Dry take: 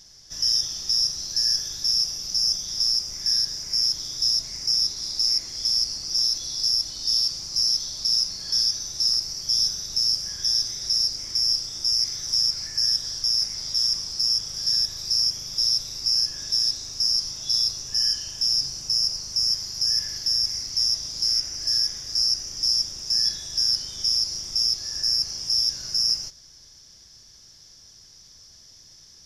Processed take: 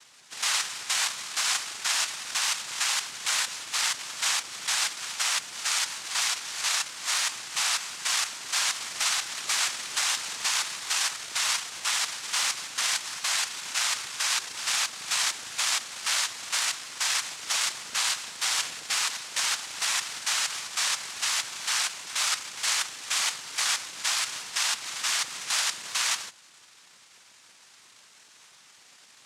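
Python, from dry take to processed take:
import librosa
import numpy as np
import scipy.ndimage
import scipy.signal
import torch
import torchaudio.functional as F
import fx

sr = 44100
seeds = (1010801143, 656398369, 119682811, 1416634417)

y = fx.noise_vocoder(x, sr, seeds[0], bands=2)
y = fx.band_squash(y, sr, depth_pct=40, at=(8.57, 10.77))
y = y * librosa.db_to_amplitude(-4.5)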